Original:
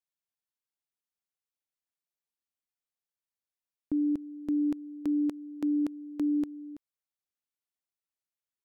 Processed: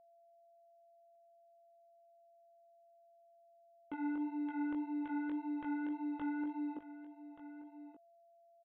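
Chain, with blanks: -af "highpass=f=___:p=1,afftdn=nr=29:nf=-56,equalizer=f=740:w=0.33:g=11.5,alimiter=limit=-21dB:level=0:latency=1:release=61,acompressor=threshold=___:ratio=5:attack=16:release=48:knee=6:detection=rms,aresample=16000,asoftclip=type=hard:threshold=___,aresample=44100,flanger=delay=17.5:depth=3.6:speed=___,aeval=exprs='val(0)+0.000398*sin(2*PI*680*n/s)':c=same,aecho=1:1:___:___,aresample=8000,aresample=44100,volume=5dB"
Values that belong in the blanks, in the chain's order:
230, -32dB, -39.5dB, 1.8, 1179, 0.2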